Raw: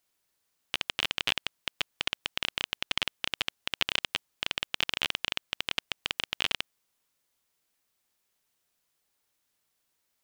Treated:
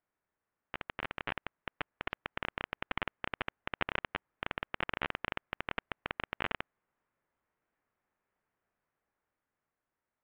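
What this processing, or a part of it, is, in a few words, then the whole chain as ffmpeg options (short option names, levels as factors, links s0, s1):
action camera in a waterproof case: -af "lowpass=f=1900:w=0.5412,lowpass=f=1900:w=1.3066,dynaudnorm=f=470:g=7:m=1.68,volume=0.75" -ar 48000 -c:a aac -b:a 64k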